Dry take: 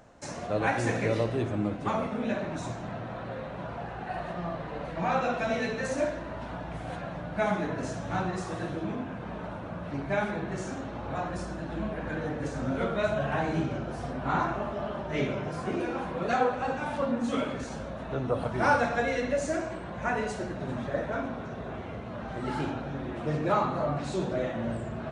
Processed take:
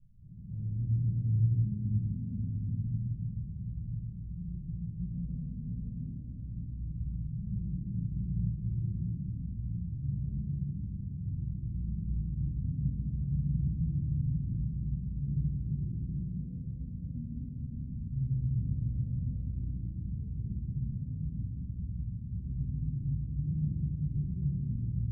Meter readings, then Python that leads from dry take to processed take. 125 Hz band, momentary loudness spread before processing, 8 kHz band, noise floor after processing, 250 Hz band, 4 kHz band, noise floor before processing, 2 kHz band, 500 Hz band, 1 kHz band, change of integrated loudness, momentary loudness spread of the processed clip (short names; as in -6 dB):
+5.5 dB, 10 LU, under -35 dB, -42 dBFS, -5.5 dB, under -40 dB, -39 dBFS, under -40 dB, under -35 dB, under -40 dB, -3.5 dB, 8 LU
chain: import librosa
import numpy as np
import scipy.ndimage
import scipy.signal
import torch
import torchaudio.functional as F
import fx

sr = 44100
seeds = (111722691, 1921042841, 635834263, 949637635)

y = scipy.signal.sosfilt(scipy.signal.cheby2(4, 80, 790.0, 'lowpass', fs=sr, output='sos'), x)
y = fx.room_shoebox(y, sr, seeds[0], volume_m3=180.0, walls='hard', distance_m=1.0)